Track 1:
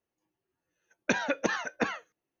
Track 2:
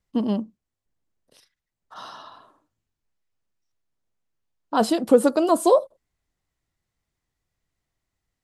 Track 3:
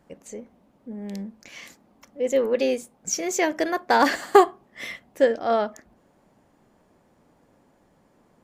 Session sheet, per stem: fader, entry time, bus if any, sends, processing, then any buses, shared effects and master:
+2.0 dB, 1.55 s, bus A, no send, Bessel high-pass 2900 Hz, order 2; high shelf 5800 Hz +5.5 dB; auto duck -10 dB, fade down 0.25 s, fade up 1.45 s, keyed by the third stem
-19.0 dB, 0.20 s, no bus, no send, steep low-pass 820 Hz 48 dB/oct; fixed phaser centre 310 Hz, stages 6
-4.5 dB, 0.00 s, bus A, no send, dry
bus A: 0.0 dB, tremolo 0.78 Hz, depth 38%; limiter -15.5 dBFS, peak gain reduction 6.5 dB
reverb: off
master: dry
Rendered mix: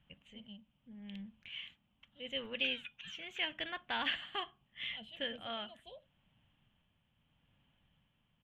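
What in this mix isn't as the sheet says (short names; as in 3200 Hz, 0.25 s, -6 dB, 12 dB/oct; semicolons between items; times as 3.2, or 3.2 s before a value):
stem 2: missing steep low-pass 820 Hz 48 dB/oct; master: extra EQ curve 130 Hz 0 dB, 390 Hz -22 dB, 2100 Hz -4 dB, 3100 Hz +12 dB, 4900 Hz -28 dB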